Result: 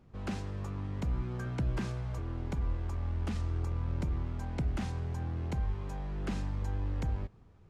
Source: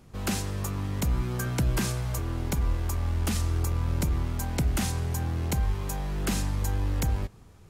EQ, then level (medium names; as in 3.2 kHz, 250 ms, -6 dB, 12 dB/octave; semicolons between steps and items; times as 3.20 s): tape spacing loss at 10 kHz 21 dB; -6.0 dB